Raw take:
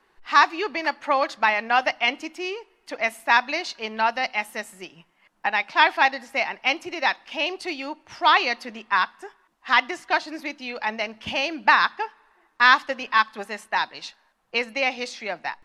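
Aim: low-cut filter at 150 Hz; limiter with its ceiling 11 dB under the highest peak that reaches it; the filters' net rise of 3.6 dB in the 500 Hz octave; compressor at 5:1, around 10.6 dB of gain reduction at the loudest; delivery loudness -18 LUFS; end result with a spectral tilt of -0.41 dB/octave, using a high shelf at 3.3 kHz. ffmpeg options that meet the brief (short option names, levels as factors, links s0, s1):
-af "highpass=150,equalizer=f=500:t=o:g=5,highshelf=f=3300:g=-8,acompressor=threshold=0.0708:ratio=5,volume=5.31,alimiter=limit=0.501:level=0:latency=1"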